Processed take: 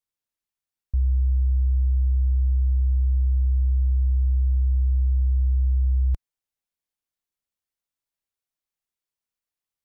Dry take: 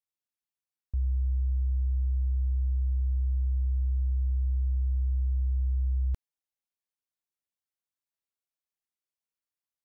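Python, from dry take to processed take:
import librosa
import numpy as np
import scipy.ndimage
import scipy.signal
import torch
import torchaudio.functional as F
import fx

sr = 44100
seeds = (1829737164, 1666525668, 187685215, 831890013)

y = fx.low_shelf(x, sr, hz=68.0, db=9.0)
y = y * 10.0 ** (2.0 / 20.0)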